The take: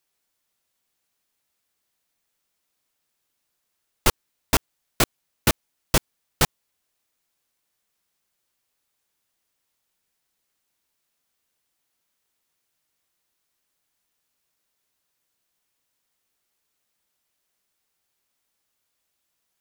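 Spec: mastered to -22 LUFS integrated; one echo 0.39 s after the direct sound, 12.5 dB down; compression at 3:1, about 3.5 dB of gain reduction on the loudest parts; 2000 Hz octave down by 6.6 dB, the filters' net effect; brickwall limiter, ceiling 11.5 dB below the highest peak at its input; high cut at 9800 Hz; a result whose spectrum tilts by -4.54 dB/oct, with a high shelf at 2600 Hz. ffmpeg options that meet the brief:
-af "lowpass=9.8k,equalizer=f=2k:t=o:g=-5,highshelf=f=2.6k:g=-8,acompressor=threshold=-20dB:ratio=3,alimiter=limit=-19.5dB:level=0:latency=1,aecho=1:1:390:0.237,volume=18dB"

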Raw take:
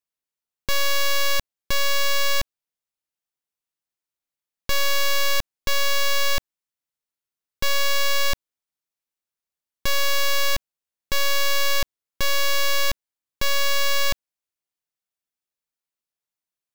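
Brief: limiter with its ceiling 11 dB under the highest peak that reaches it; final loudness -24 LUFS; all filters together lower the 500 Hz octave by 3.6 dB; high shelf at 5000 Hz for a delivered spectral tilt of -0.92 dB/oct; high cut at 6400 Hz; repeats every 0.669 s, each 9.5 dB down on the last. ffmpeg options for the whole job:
-af "lowpass=6.4k,equalizer=f=500:t=o:g=-4,highshelf=f=5k:g=-3.5,alimiter=level_in=3.5dB:limit=-24dB:level=0:latency=1,volume=-3.5dB,aecho=1:1:669|1338|2007|2676:0.335|0.111|0.0365|0.012,volume=13.5dB"

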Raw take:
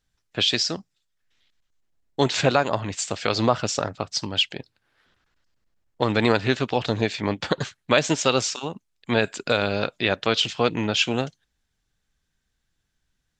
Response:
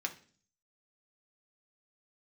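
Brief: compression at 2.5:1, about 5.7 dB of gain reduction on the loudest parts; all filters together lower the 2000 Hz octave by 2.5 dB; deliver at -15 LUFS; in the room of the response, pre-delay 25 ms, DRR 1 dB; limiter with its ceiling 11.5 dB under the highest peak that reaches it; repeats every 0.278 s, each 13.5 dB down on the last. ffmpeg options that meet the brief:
-filter_complex "[0:a]equalizer=f=2k:t=o:g=-3.5,acompressor=threshold=-23dB:ratio=2.5,alimiter=limit=-20.5dB:level=0:latency=1,aecho=1:1:278|556:0.211|0.0444,asplit=2[a][b];[1:a]atrim=start_sample=2205,adelay=25[c];[b][c]afir=irnorm=-1:irlink=0,volume=-3.5dB[d];[a][d]amix=inputs=2:normalize=0,volume=16dB"

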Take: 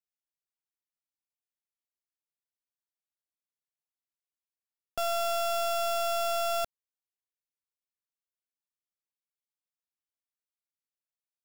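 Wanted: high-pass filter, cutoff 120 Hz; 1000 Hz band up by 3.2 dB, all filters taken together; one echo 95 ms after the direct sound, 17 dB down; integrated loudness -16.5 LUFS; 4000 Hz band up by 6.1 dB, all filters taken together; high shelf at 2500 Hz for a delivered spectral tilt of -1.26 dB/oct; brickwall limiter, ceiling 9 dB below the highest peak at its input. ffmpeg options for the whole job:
-af "highpass=120,equalizer=f=1k:t=o:g=5,highshelf=f=2.5k:g=4,equalizer=f=4k:t=o:g=4,alimiter=level_in=4dB:limit=-24dB:level=0:latency=1,volume=-4dB,aecho=1:1:95:0.141,volume=19dB"

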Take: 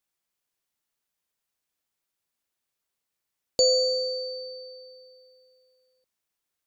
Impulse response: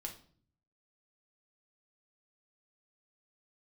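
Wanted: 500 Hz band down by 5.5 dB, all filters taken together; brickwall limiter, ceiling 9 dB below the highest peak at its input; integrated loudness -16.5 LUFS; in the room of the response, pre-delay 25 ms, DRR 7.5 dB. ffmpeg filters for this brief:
-filter_complex "[0:a]equalizer=f=500:t=o:g=-5.5,alimiter=limit=-20dB:level=0:latency=1,asplit=2[a][b];[1:a]atrim=start_sample=2205,adelay=25[c];[b][c]afir=irnorm=-1:irlink=0,volume=-5dB[d];[a][d]amix=inputs=2:normalize=0,volume=13dB"

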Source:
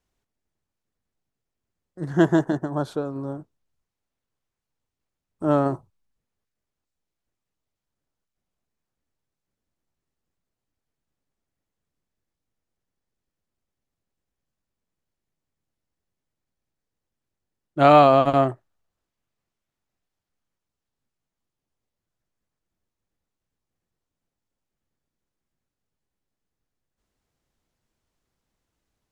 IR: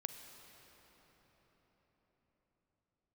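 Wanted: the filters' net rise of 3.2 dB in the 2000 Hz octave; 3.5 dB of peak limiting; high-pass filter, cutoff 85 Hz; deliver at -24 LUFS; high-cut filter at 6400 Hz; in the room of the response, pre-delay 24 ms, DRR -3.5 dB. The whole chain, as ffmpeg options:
-filter_complex "[0:a]highpass=85,lowpass=6.4k,equalizer=f=2k:t=o:g=4.5,alimiter=limit=-4dB:level=0:latency=1,asplit=2[a][b];[1:a]atrim=start_sample=2205,adelay=24[c];[b][c]afir=irnorm=-1:irlink=0,volume=5.5dB[d];[a][d]amix=inputs=2:normalize=0,volume=-7dB"

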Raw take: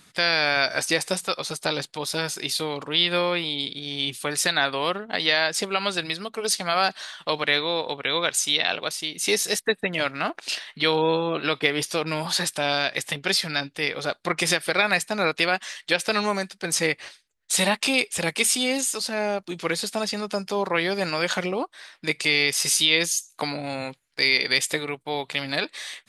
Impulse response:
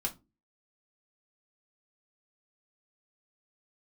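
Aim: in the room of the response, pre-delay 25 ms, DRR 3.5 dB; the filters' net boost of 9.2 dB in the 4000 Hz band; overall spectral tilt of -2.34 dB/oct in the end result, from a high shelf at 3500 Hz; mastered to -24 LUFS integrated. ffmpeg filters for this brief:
-filter_complex "[0:a]highshelf=f=3.5k:g=7.5,equalizer=f=4k:t=o:g=6,asplit=2[a][b];[1:a]atrim=start_sample=2205,adelay=25[c];[b][c]afir=irnorm=-1:irlink=0,volume=-6.5dB[d];[a][d]amix=inputs=2:normalize=0,volume=-8dB"

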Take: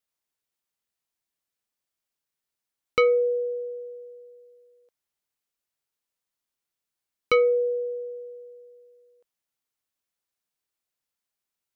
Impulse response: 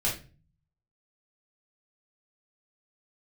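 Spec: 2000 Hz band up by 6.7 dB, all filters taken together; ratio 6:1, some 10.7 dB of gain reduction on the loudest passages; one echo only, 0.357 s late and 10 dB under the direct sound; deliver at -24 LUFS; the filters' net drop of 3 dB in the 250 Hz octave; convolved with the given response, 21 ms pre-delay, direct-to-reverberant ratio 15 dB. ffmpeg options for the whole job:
-filter_complex "[0:a]equalizer=f=250:t=o:g=-4.5,equalizer=f=2k:t=o:g=7.5,acompressor=threshold=-25dB:ratio=6,aecho=1:1:357:0.316,asplit=2[a][b];[1:a]atrim=start_sample=2205,adelay=21[c];[b][c]afir=irnorm=-1:irlink=0,volume=-23dB[d];[a][d]amix=inputs=2:normalize=0,volume=5dB"

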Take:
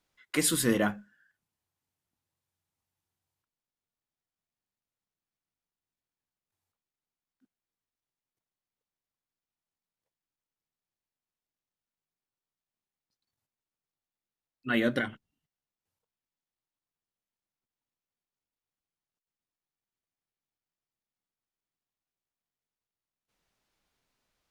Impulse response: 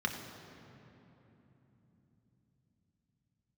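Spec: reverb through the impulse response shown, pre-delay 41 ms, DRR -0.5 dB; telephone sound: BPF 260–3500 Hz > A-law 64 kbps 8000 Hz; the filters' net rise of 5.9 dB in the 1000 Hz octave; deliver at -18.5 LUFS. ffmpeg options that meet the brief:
-filter_complex "[0:a]equalizer=f=1k:t=o:g=9,asplit=2[a][b];[1:a]atrim=start_sample=2205,adelay=41[c];[b][c]afir=irnorm=-1:irlink=0,volume=-5.5dB[d];[a][d]amix=inputs=2:normalize=0,highpass=260,lowpass=3.5k,volume=10dB" -ar 8000 -c:a pcm_alaw

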